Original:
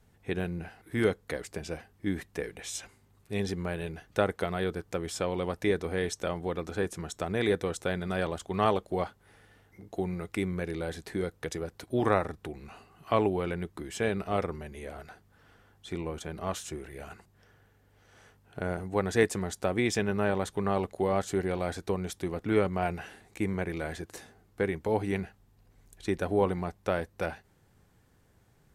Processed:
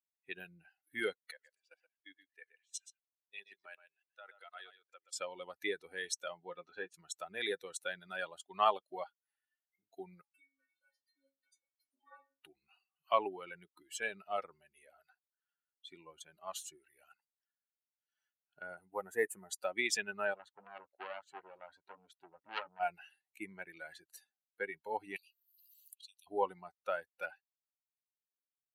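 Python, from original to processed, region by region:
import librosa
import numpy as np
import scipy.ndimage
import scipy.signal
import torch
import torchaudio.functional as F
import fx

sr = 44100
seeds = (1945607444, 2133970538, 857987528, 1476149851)

y = fx.chain(x, sr, fx.weighting(curve='A'),
    fx.level_steps(step_db=19),
    fx.echo_single(ms=125, db=-6.5), at=(1.31, 5.17))
y = fx.chain(y, sr, fx.lowpass(hz=4600.0, slope=12),
    fx.doubler(ms=17.0, db=-9.0), at=(6.37, 6.94))
y = fx.chain(y, sr, fx.steep_highpass(hz=160.0, slope=36),
    fx.stiff_resonator(f0_hz=270.0, decay_s=0.53, stiffness=0.008), at=(10.21, 12.41))
y = fx.chain(y, sr, fx.cvsd(bps=64000),
    fx.peak_eq(hz=4400.0, db=-14.0, octaves=1.3),
    fx.notch(hz=5500.0, q=28.0), at=(18.89, 19.51))
y = fx.chain(y, sr, fx.lowpass(hz=1800.0, slope=6),
    fx.transformer_sat(knee_hz=2000.0), at=(20.34, 22.8))
y = fx.chain(y, sr, fx.steep_highpass(hz=2600.0, slope=72),
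    fx.band_squash(depth_pct=100), at=(25.16, 26.27))
y = fx.bin_expand(y, sr, power=2.0)
y = scipy.signal.sosfilt(scipy.signal.butter(2, 710.0, 'highpass', fs=sr, output='sos'), y)
y = F.gain(torch.from_numpy(y), 2.5).numpy()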